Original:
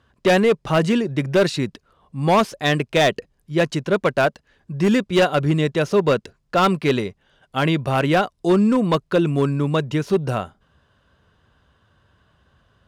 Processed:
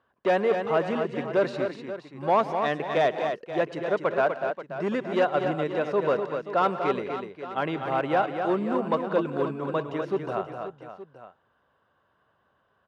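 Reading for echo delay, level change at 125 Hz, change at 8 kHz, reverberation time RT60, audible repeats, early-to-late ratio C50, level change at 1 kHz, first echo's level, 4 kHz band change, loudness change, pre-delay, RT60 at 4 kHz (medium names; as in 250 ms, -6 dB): 108 ms, -15.0 dB, under -15 dB, no reverb, 5, no reverb, -3.5 dB, -19.5 dB, -13.5 dB, -7.0 dB, no reverb, no reverb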